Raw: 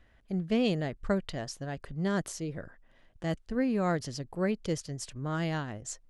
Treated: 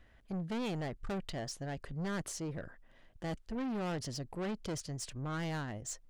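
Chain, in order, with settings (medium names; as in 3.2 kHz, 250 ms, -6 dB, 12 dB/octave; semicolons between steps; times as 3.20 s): saturation -34 dBFS, distortion -7 dB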